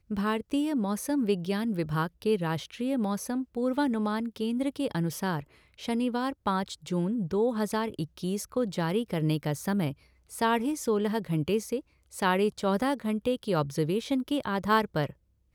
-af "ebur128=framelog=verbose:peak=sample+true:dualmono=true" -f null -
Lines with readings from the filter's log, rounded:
Integrated loudness:
  I:         -26.4 LUFS
  Threshold: -36.6 LUFS
Loudness range:
  LRA:         2.1 LU
  Threshold: -46.7 LUFS
  LRA low:   -27.6 LUFS
  LRA high:  -25.5 LUFS
Sample peak:
  Peak:      -11.7 dBFS
True peak:
  Peak:      -11.7 dBFS